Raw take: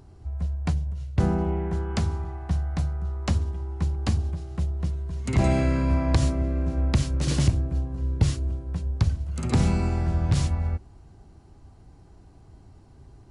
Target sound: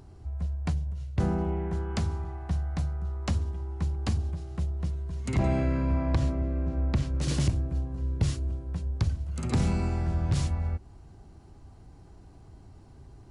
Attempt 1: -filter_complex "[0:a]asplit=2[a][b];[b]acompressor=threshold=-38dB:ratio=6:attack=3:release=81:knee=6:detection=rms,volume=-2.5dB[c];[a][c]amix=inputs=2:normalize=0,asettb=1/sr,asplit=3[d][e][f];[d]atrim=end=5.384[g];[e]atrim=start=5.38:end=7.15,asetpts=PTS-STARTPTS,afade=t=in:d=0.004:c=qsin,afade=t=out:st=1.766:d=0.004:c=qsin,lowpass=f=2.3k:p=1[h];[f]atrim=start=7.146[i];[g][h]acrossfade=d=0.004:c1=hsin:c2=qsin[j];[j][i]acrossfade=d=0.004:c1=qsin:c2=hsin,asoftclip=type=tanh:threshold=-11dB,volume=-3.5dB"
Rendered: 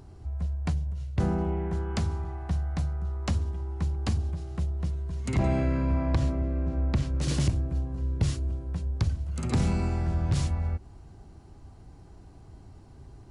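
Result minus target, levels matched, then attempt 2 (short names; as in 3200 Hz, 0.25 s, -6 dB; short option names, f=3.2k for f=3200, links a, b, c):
compressor: peak gain reduction -9 dB
-filter_complex "[0:a]asplit=2[a][b];[b]acompressor=threshold=-49dB:ratio=6:attack=3:release=81:knee=6:detection=rms,volume=-2.5dB[c];[a][c]amix=inputs=2:normalize=0,asettb=1/sr,asplit=3[d][e][f];[d]atrim=end=5.384[g];[e]atrim=start=5.38:end=7.15,asetpts=PTS-STARTPTS,afade=t=in:d=0.004:c=qsin,afade=t=out:st=1.766:d=0.004:c=qsin,lowpass=f=2.3k:p=1[h];[f]atrim=start=7.146[i];[g][h]acrossfade=d=0.004:c1=hsin:c2=qsin[j];[j][i]acrossfade=d=0.004:c1=qsin:c2=hsin,asoftclip=type=tanh:threshold=-11dB,volume=-3.5dB"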